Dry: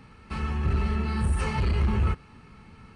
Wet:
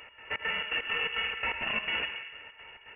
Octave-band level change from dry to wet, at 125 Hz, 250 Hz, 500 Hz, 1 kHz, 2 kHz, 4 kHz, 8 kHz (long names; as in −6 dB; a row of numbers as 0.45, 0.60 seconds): −29.5 dB, −19.0 dB, −5.5 dB, −3.5 dB, +9.0 dB, +11.5 dB, below −35 dB